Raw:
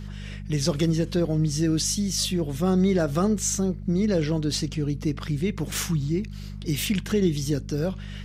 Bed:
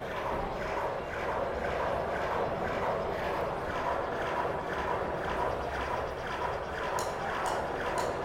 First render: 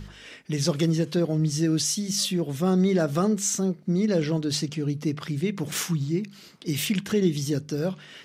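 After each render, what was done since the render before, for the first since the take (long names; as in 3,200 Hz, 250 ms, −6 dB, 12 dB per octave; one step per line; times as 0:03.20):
hum removal 50 Hz, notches 4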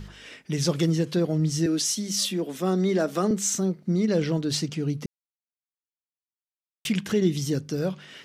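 0:01.66–0:03.31: Butterworth high-pass 190 Hz
0:05.06–0:06.85: silence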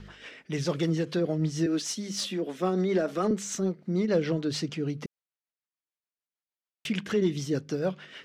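mid-hump overdrive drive 10 dB, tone 1,800 Hz, clips at −11 dBFS
rotating-speaker cabinet horn 6.7 Hz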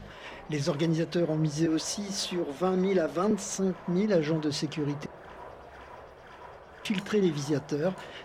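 mix in bed −13.5 dB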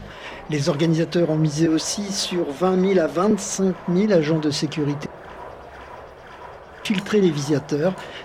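level +8 dB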